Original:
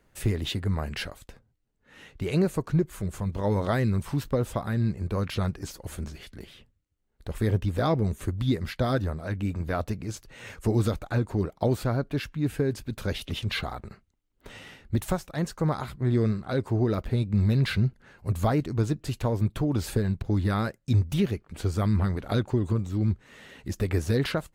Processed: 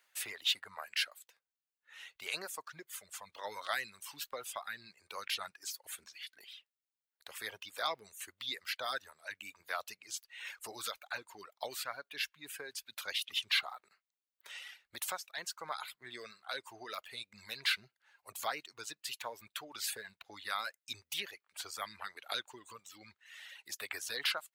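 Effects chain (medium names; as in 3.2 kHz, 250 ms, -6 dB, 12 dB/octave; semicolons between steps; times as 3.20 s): differentiator; reverb removal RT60 1.9 s; three-band isolator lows -16 dB, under 540 Hz, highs -12 dB, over 4.3 kHz; trim +11 dB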